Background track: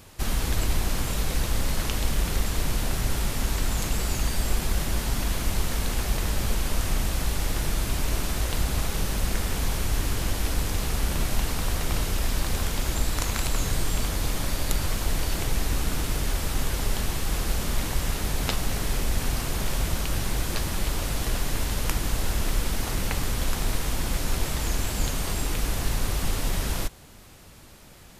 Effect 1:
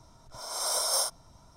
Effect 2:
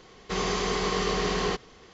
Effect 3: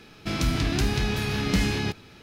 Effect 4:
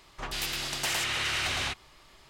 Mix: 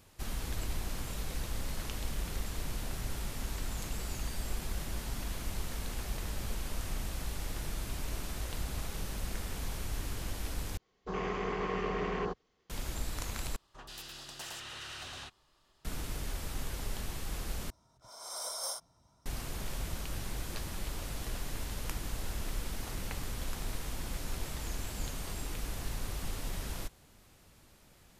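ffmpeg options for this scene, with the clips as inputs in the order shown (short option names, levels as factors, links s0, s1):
-filter_complex "[0:a]volume=0.266[s0];[2:a]afwtdn=0.0224[s1];[4:a]equalizer=f=2200:w=5.3:g=-11[s2];[1:a]highpass=49[s3];[s0]asplit=4[s4][s5][s6][s7];[s4]atrim=end=10.774[s8];[s1]atrim=end=1.93,asetpts=PTS-STARTPTS,volume=0.473[s9];[s5]atrim=start=12.696:end=13.564[s10];[s2]atrim=end=2.29,asetpts=PTS-STARTPTS,volume=0.224[s11];[s6]atrim=start=15.846:end=17.704[s12];[s3]atrim=end=1.56,asetpts=PTS-STARTPTS,volume=0.299[s13];[s7]atrim=start=19.256[s14];[s8][s9]acrossfade=d=0.004:c1=hsin:c2=hsin[s15];[s15][s10]acrossfade=d=0.004:c1=hsin:c2=hsin[s16];[s16][s11]acrossfade=d=0.004:c1=hsin:c2=hsin[s17];[s17][s12]acrossfade=d=0.004:c1=hsin:c2=hsin[s18];[s18][s13]acrossfade=d=0.004:c1=hsin:c2=hsin[s19];[s19][s14]acrossfade=d=0.004:c1=hsin:c2=hsin"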